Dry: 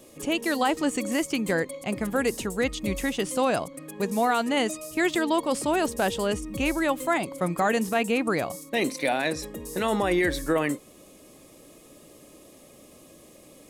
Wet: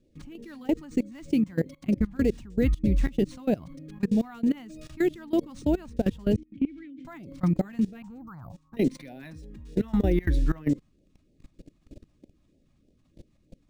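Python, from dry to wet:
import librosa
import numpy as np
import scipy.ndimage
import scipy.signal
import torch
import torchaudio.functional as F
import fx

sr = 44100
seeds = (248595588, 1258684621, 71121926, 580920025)

y = fx.curve_eq(x, sr, hz=(130.0, 340.0, 520.0, 900.0, 1400.0, 2400.0, 5900.0, 9900.0), db=(0, -14, -13, 12, 4, -29, -7, -12), at=(8.02, 8.77))
y = np.repeat(y[::3], 3)[:len(y)]
y = fx.phaser_stages(y, sr, stages=2, low_hz=420.0, high_hz=1200.0, hz=3.2, feedback_pct=5)
y = fx.vowel_filter(y, sr, vowel='i', at=(6.36, 7.05))
y = fx.tilt_eq(y, sr, slope=-4.0)
y = fx.level_steps(y, sr, step_db=22)
y = fx.highpass(y, sr, hz=58.0, slope=12, at=(1.32, 1.78))
y = y * 10.0 ** (1.0 / 20.0)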